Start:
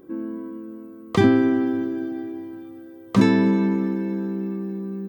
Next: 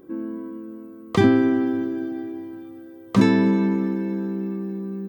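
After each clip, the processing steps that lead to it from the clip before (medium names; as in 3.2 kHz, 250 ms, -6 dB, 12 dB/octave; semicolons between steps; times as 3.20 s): no audible change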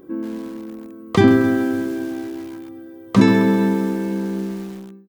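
fade out at the end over 0.69 s; bit-crushed delay 132 ms, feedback 55%, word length 6-bit, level -11 dB; trim +3.5 dB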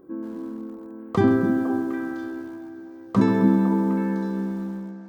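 resonant high shelf 1.7 kHz -7 dB, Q 1.5; repeats whose band climbs or falls 253 ms, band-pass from 260 Hz, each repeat 1.4 oct, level -1 dB; trim -6 dB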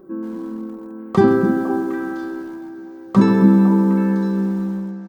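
comb 5.3 ms, depth 58%; trim +4 dB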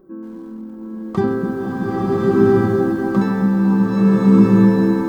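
bass shelf 110 Hz +9 dB; swelling reverb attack 1290 ms, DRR -7.5 dB; trim -6 dB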